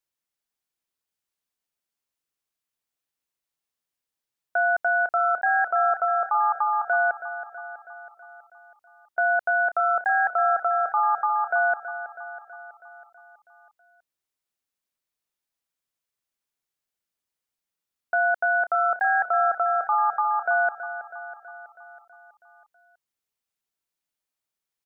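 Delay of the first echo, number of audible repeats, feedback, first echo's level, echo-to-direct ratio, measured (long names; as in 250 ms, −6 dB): 324 ms, 6, 60%, −12.0 dB, −10.0 dB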